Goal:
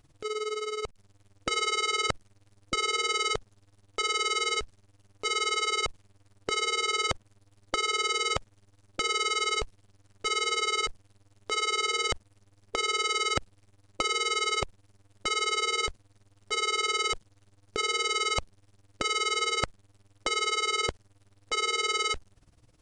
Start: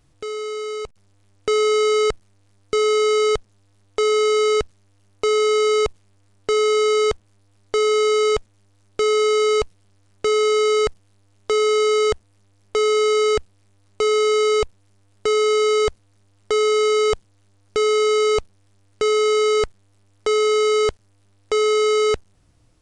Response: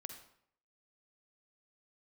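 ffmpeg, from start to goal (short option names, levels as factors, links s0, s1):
-af "tremolo=f=19:d=0.84,afftfilt=real='re*lt(hypot(re,im),0.447)':imag='im*lt(hypot(re,im),0.447)':win_size=1024:overlap=0.75,volume=1.19"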